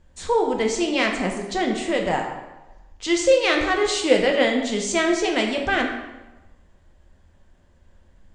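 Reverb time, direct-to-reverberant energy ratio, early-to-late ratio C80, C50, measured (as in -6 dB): 1.1 s, 1.0 dB, 7.0 dB, 5.0 dB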